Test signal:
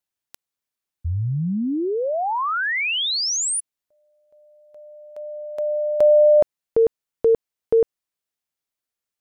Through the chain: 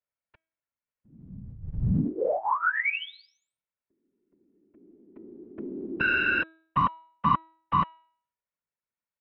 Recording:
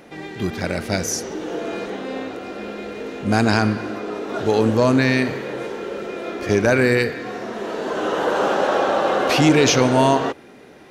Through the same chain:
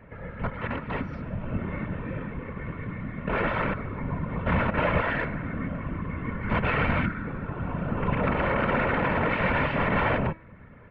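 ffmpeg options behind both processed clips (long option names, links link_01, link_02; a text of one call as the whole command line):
ffmpeg -i in.wav -af "aeval=exprs='(mod(4.47*val(0)+1,2)-1)/4.47':channel_layout=same,aecho=1:1:2.4:0.83,highpass=frequency=200:width_type=q:width=0.5412,highpass=frequency=200:width_type=q:width=1.307,lowpass=frequency=2700:width_type=q:width=0.5176,lowpass=frequency=2700:width_type=q:width=0.7071,lowpass=frequency=2700:width_type=q:width=1.932,afreqshift=-280,afftfilt=real='hypot(re,im)*cos(2*PI*random(0))':imag='hypot(re,im)*sin(2*PI*random(1))':win_size=512:overlap=0.75,bandreject=frequency=322.8:width_type=h:width=4,bandreject=frequency=645.6:width_type=h:width=4,bandreject=frequency=968.4:width_type=h:width=4,bandreject=frequency=1291.2:width_type=h:width=4,bandreject=frequency=1614:width_type=h:width=4,bandreject=frequency=1936.8:width_type=h:width=4,bandreject=frequency=2259.6:width_type=h:width=4,bandreject=frequency=2582.4:width_type=h:width=4,bandreject=frequency=2905.2:width_type=h:width=4,bandreject=frequency=3228:width_type=h:width=4,bandreject=frequency=3550.8:width_type=h:width=4,bandreject=frequency=3873.6:width_type=h:width=4,bandreject=frequency=4196.4:width_type=h:width=4" out.wav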